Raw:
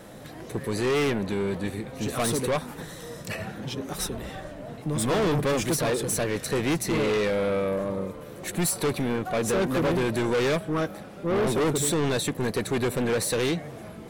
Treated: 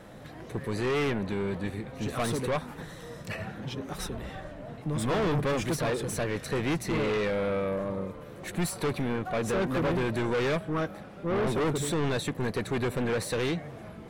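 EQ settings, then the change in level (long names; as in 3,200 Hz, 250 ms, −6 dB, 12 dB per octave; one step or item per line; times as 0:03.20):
parametric band 370 Hz −4 dB 2.5 octaves
high-shelf EQ 4,200 Hz −11.5 dB
0.0 dB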